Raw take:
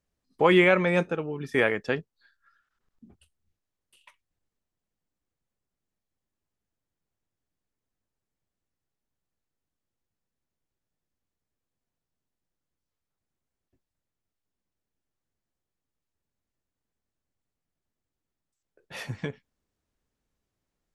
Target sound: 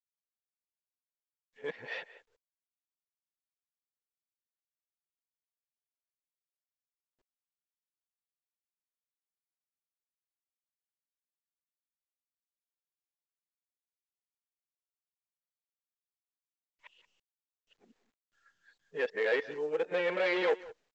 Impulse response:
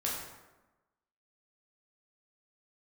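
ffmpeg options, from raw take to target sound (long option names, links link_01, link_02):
-filter_complex "[0:a]areverse,agate=range=-33dB:threshold=-60dB:ratio=3:detection=peak,aresample=16000,asoftclip=type=tanh:threshold=-25dB,aresample=44100,highpass=450,equalizer=frequency=470:width_type=q:width=4:gain=9,equalizer=frequency=1200:width_type=q:width=4:gain=-6,equalizer=frequency=1800:width_type=q:width=4:gain=5,lowpass=frequency=3900:width=0.5412,lowpass=frequency=3900:width=1.3066,asplit=2[link_01][link_02];[link_02]adelay=180,highpass=300,lowpass=3400,asoftclip=type=hard:threshold=-25dB,volume=-17dB[link_03];[link_01][link_03]amix=inputs=2:normalize=0,volume=-2dB" -ar 16000 -c:a pcm_mulaw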